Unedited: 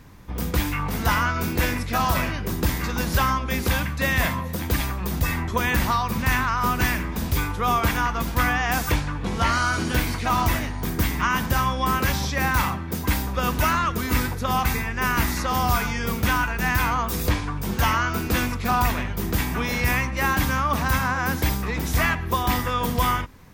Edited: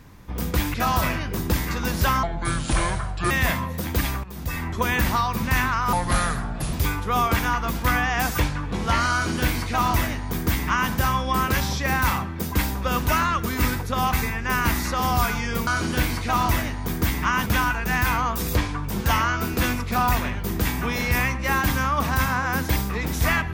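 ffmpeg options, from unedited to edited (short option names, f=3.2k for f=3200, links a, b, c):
-filter_complex "[0:a]asplit=9[a][b][c][d][e][f][g][h][i];[a]atrim=end=0.742[j];[b]atrim=start=1.868:end=3.364[k];[c]atrim=start=3.36:end=4.06,asetpts=PTS-STARTPTS,asetrate=28665,aresample=44100,atrim=end_sample=47492,asetpts=PTS-STARTPTS[l];[d]atrim=start=4.056:end=4.99,asetpts=PTS-STARTPTS,afade=t=out:st=0.93:d=0.004:c=hsin:silence=0.188365[m];[e]atrim=start=4.99:end=6.684,asetpts=PTS-STARTPTS,afade=t=in:d=0.59:silence=0.188365[n];[f]atrim=start=6.68:end=7.25,asetpts=PTS-STARTPTS,asetrate=31311,aresample=44100,atrim=end_sample=35404,asetpts=PTS-STARTPTS[o];[g]atrim=start=7.246:end=16.192[p];[h]atrim=start=9.638:end=11.432[q];[i]atrim=start=16.188[r];[j][k]acrossfade=d=0.004:c1=hsin:c2=hsin[s];[s][l]acrossfade=d=0.004:c1=hsin:c2=hsin[t];[m][n]concat=n=2:v=0:a=1[u];[t][u]acrossfade=d=0.004:c1=hsin:c2=hsin[v];[v][o]acrossfade=d=0.004:c1=hsin:c2=hsin[w];[w][p]acrossfade=d=0.004:c1=hsin:c2=hsin[x];[x][q]acrossfade=d=0.004:c1=hsin:c2=hsin[y];[y][r]acrossfade=d=0.004:c1=hsin:c2=hsin"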